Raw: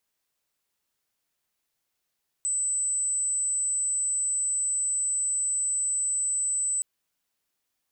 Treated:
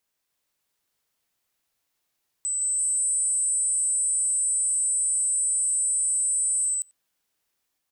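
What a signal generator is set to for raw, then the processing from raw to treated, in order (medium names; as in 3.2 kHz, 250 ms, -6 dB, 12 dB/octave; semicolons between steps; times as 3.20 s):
tone sine 8.02 kHz -24 dBFS 4.37 s
ever faster or slower copies 304 ms, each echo +1 st, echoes 3; speakerphone echo 90 ms, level -13 dB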